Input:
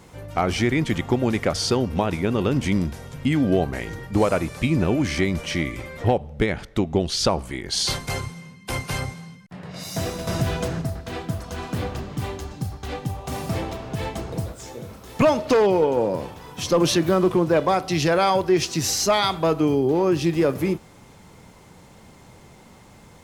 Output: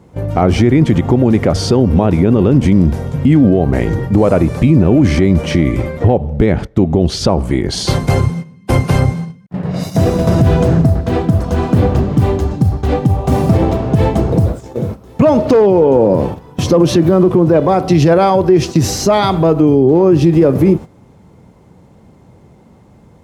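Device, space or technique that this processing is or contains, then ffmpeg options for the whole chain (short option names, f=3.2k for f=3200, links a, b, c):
mastering chain: -af "highpass=50,equalizer=f=1.3k:t=o:w=2.3:g=-2.5,acompressor=threshold=-22dB:ratio=2.5,tiltshelf=f=1.4k:g=8,alimiter=level_in=12.5dB:limit=-1dB:release=50:level=0:latency=1,agate=range=-13dB:threshold=-19dB:ratio=16:detection=peak,volume=-1dB"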